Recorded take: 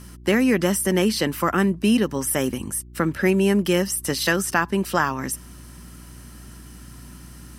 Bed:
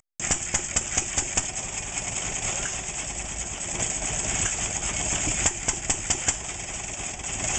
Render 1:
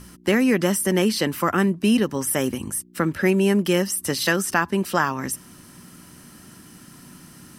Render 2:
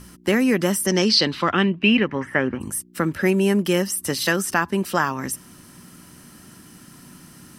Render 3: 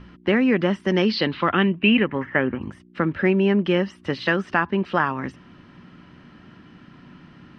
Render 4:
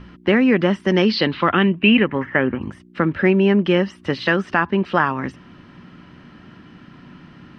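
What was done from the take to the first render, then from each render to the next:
de-hum 60 Hz, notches 2
0.86–2.60 s: resonant low-pass 6.1 kHz -> 1.4 kHz
low-pass 3.3 kHz 24 dB/octave
trim +3.5 dB; peak limiter -3 dBFS, peak gain reduction 1.5 dB

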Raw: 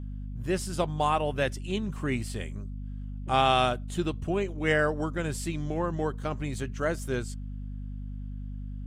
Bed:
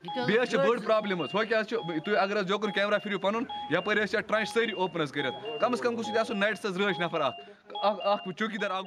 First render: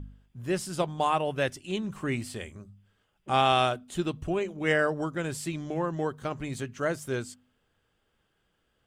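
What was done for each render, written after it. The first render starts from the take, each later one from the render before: de-hum 50 Hz, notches 5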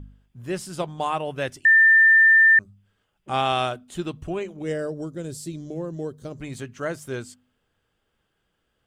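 1.65–2.59 s: bleep 1.79 kHz -11 dBFS; 4.62–6.41 s: high-order bell 1.5 kHz -13 dB 2.3 oct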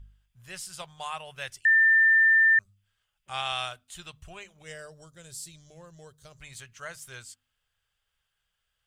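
amplifier tone stack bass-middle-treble 10-0-10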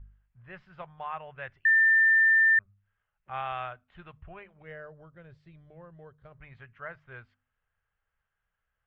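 inverse Chebyshev low-pass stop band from 10 kHz, stop band 80 dB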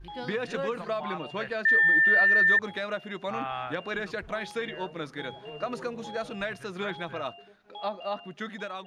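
add bed -6 dB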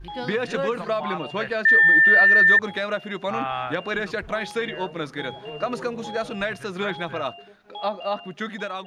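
trim +6 dB

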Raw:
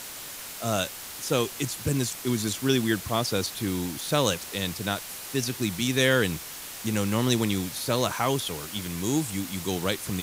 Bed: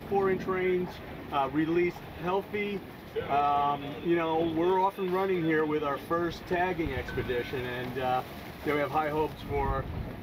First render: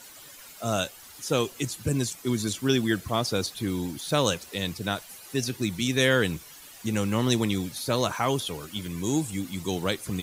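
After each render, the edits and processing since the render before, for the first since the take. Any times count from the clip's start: noise reduction 12 dB, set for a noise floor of -40 dBFS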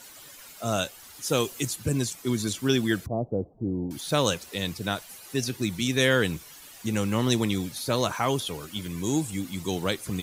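1.24–1.76 s: treble shelf 6.6 kHz +6.5 dB; 3.06–3.91 s: steep low-pass 730 Hz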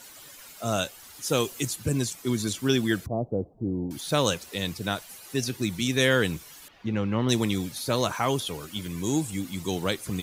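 6.68–7.29 s: distance through air 290 m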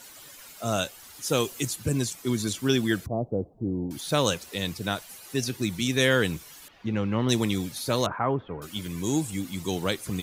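8.06–8.62 s: low-pass 1.7 kHz 24 dB/octave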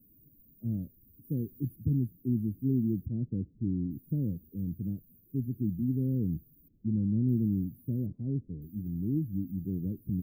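inverse Chebyshev band-stop 850–8200 Hz, stop band 60 dB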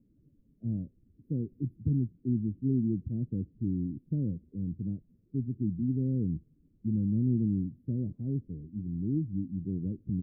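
low-pass 2.2 kHz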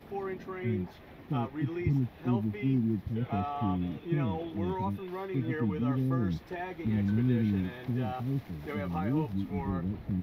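add bed -9.5 dB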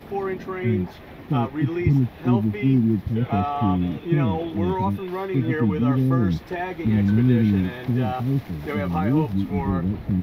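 trim +9.5 dB

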